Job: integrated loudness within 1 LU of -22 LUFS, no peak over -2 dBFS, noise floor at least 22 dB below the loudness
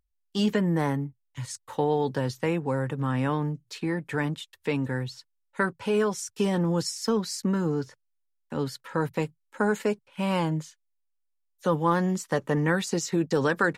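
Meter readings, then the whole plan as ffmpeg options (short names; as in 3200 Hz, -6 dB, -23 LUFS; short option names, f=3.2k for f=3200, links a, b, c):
loudness -28.0 LUFS; peak -12.0 dBFS; loudness target -22.0 LUFS
-> -af "volume=6dB"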